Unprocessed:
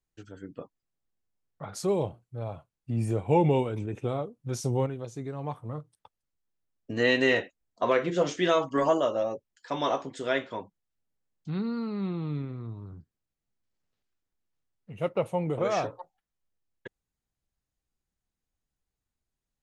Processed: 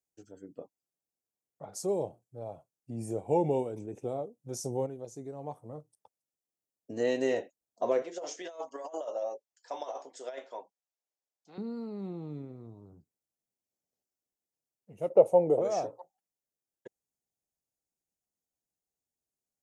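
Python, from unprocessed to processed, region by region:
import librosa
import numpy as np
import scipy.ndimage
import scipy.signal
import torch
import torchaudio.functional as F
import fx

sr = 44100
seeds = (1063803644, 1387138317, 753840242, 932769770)

y = fx.chain(x, sr, fx.bandpass_edges(low_hz=690.0, high_hz=6000.0),
    fx.over_compress(threshold_db=-32.0, ratio=-0.5), at=(8.02, 11.58))
y = fx.chain(y, sr, fx.peak_eq(hz=530.0, db=11.5, octaves=1.7),
    fx.notch(hz=1600.0, q=27.0), at=(15.1, 15.61))
y = fx.highpass(y, sr, hz=460.0, slope=6)
y = fx.band_shelf(y, sr, hz=2100.0, db=-15.0, octaves=2.3)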